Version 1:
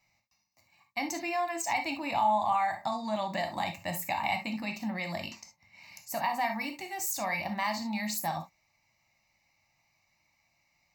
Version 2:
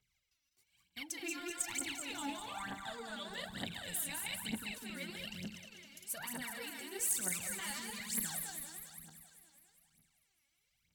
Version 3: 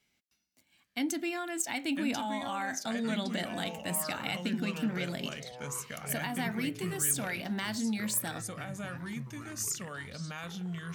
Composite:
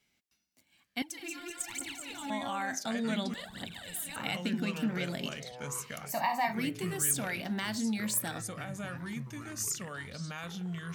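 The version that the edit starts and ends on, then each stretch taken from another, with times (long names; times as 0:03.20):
3
0:01.02–0:02.30: punch in from 2
0:03.34–0:04.16: punch in from 2
0:06.08–0:06.51: punch in from 1, crossfade 0.10 s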